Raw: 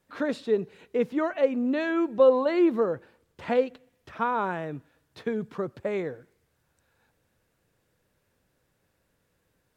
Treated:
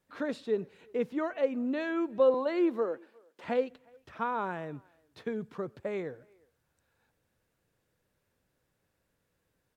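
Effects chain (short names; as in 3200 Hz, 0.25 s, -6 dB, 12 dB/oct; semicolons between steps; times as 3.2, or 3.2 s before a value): 2.34–3.44 HPF 240 Hz 24 dB/oct; speakerphone echo 0.36 s, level -28 dB; gain -5.5 dB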